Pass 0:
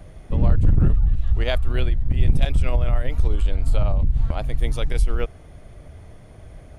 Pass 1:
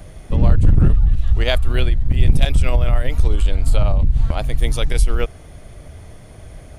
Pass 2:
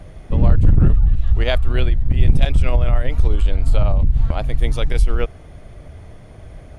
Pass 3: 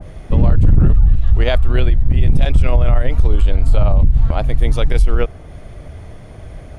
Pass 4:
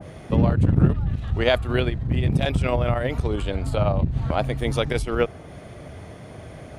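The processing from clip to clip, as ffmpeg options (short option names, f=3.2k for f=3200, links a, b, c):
-af "highshelf=f=3.4k:g=7.5,volume=4dB"
-af "lowpass=f=2.9k:p=1"
-af "alimiter=limit=-8.5dB:level=0:latency=1:release=23,adynamicequalizer=threshold=0.00631:dfrequency=1600:dqfactor=0.7:tfrequency=1600:tqfactor=0.7:attack=5:release=100:ratio=0.375:range=1.5:mode=cutabove:tftype=highshelf,volume=4.5dB"
-af "highpass=120"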